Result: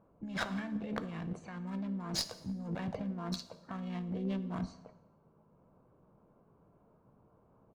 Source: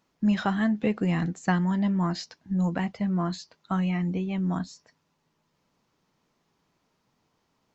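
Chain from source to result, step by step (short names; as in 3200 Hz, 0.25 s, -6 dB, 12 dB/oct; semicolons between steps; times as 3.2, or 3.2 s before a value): Wiener smoothing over 25 samples; low-pass opened by the level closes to 1400 Hz, open at -25.5 dBFS; dynamic EQ 230 Hz, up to -4 dB, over -35 dBFS, Q 1.8; comb 1.8 ms, depth 33%; negative-ratio compressor -39 dBFS, ratio -1; harmoniser +5 st -9 dB; one-sided clip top -32 dBFS; plate-style reverb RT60 0.94 s, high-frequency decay 0.85×, DRR 11 dB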